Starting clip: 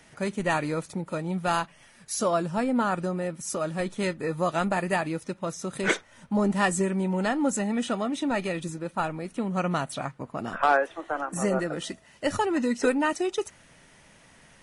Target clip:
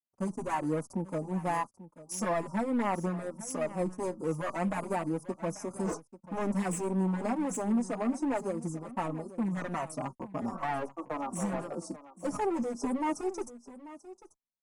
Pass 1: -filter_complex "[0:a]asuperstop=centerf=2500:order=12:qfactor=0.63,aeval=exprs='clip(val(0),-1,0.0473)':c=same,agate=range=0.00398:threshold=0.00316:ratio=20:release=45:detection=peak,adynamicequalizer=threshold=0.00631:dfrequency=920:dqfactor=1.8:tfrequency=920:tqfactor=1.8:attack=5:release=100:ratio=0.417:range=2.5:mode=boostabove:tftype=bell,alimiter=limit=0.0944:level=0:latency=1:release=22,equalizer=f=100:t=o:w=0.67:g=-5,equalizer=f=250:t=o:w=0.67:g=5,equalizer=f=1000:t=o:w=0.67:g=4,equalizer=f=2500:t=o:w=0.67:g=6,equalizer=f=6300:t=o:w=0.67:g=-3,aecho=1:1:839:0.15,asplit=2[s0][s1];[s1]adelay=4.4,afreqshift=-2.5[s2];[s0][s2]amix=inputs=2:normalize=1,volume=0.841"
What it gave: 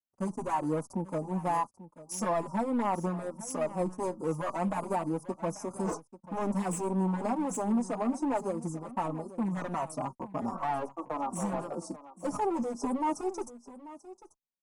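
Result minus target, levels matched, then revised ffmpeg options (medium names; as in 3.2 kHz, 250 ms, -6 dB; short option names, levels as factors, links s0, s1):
2 kHz band -4.0 dB
-filter_complex "[0:a]asuperstop=centerf=2500:order=12:qfactor=0.63,aeval=exprs='clip(val(0),-1,0.0473)':c=same,agate=range=0.00398:threshold=0.00316:ratio=20:release=45:detection=peak,adynamicequalizer=threshold=0.00631:dfrequency=1900:dqfactor=1.8:tfrequency=1900:tqfactor=1.8:attack=5:release=100:ratio=0.417:range=2.5:mode=boostabove:tftype=bell,alimiter=limit=0.0944:level=0:latency=1:release=22,equalizer=f=100:t=o:w=0.67:g=-5,equalizer=f=250:t=o:w=0.67:g=5,equalizer=f=1000:t=o:w=0.67:g=4,equalizer=f=2500:t=o:w=0.67:g=6,equalizer=f=6300:t=o:w=0.67:g=-3,aecho=1:1:839:0.15,asplit=2[s0][s1];[s1]adelay=4.4,afreqshift=-2.5[s2];[s0][s2]amix=inputs=2:normalize=1,volume=0.841"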